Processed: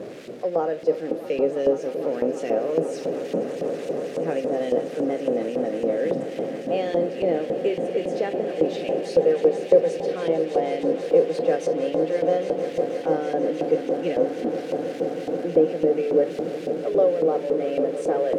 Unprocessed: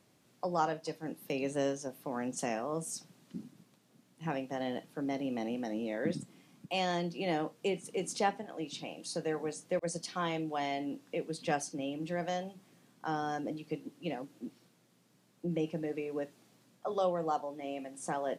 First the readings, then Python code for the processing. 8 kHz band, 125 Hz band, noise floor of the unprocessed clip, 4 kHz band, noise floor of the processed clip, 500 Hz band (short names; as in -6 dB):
n/a, +4.5 dB, -68 dBFS, +2.5 dB, -34 dBFS, +16.5 dB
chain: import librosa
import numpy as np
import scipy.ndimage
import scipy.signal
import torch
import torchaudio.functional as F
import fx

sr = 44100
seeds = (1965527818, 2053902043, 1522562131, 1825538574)

y = x + 0.5 * 10.0 ** (-40.0 / 20.0) * np.sign(x)
y = fx.rider(y, sr, range_db=3, speed_s=0.5)
y = fx.low_shelf_res(y, sr, hz=690.0, db=12.0, q=3.0)
y = fx.echo_swell(y, sr, ms=161, loudest=8, wet_db=-14)
y = fx.filter_lfo_bandpass(y, sr, shape='saw_up', hz=3.6, low_hz=800.0, high_hz=2500.0, q=1.0)
y = F.gain(torch.from_numpy(y), 4.5).numpy()